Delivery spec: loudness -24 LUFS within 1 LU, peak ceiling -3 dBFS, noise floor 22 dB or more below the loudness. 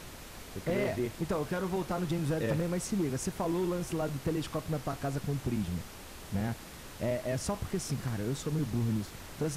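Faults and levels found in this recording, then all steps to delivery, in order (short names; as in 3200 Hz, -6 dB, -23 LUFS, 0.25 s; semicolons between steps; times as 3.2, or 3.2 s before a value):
clipped 1.0%; flat tops at -24.0 dBFS; noise floor -47 dBFS; noise floor target -56 dBFS; loudness -34.0 LUFS; peak -24.0 dBFS; loudness target -24.0 LUFS
-> clip repair -24 dBFS; noise print and reduce 9 dB; gain +10 dB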